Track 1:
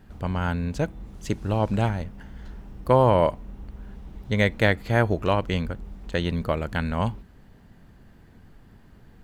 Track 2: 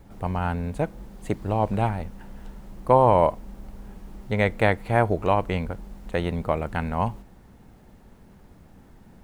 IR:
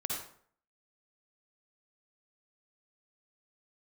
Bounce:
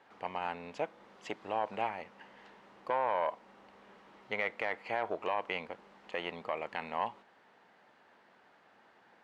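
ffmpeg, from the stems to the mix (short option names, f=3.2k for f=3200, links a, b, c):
-filter_complex "[0:a]volume=-3dB[a];[1:a]aeval=exprs='(tanh(3.16*val(0)+0.25)-tanh(0.25))/3.16':c=same,volume=-2dB,asplit=2[b][c];[c]apad=whole_len=407319[d];[a][d]sidechaincompress=threshold=-30dB:ratio=8:attack=16:release=329[e];[e][b]amix=inputs=2:normalize=0,highpass=700,lowpass=3.5k,alimiter=limit=-21dB:level=0:latency=1:release=36"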